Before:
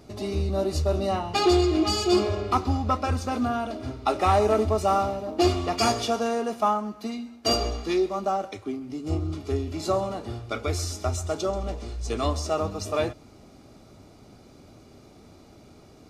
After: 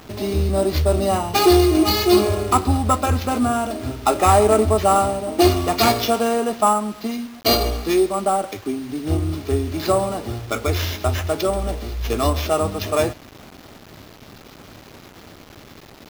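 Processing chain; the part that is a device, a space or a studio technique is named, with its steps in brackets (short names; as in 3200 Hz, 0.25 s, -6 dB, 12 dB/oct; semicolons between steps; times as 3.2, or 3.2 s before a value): early 8-bit sampler (sample-rate reducer 8900 Hz, jitter 0%; bit-crush 8-bit); gain +6.5 dB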